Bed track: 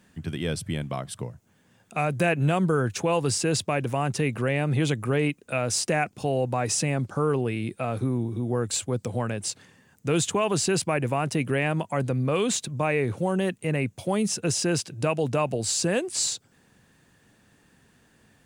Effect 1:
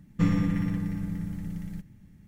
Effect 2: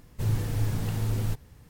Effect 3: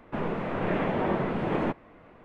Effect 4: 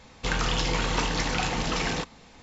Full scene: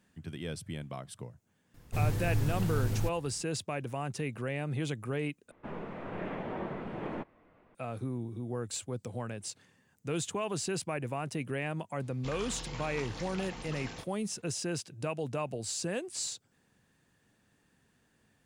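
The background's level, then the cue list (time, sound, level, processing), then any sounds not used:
bed track -10 dB
1.74 s: add 2 -3 dB
5.51 s: replace with 3 -10.5 dB
12.00 s: add 4 -16 dB
not used: 1

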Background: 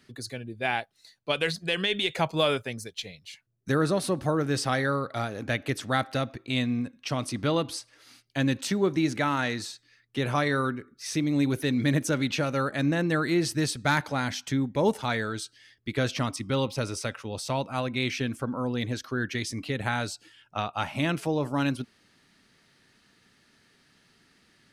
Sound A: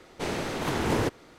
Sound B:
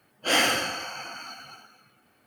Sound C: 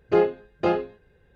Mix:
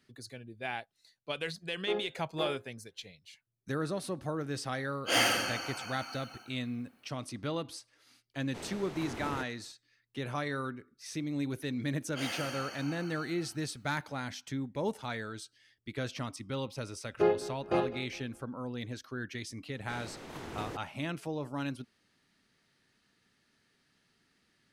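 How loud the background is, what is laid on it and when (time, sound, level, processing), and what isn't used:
background -9.5 dB
1.75 s: add C -15.5 dB + high-pass 230 Hz
4.82 s: add B -5 dB
8.34 s: add A -14 dB
11.91 s: add B -10.5 dB + compression 2.5:1, threshold -27 dBFS
17.08 s: add C -7 dB + feedback delay 204 ms, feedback 36%, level -16.5 dB
19.68 s: add A -15 dB

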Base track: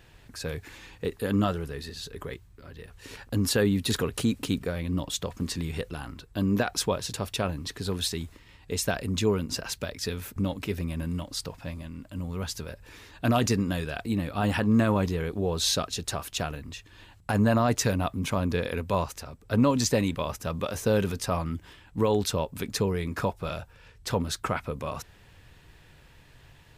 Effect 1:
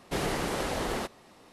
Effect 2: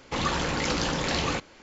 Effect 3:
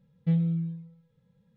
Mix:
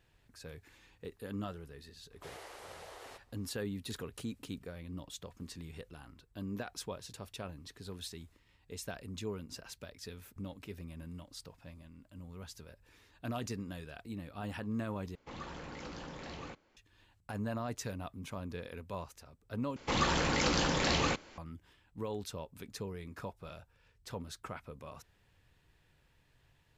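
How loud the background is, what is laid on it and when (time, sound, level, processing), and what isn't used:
base track -15 dB
2.11 s: add 1 -17 dB + high-pass 440 Hz 24 dB/octave
15.15 s: replace with 2 -17 dB + treble shelf 3 kHz -8.5 dB
19.76 s: replace with 2 -3 dB
not used: 3

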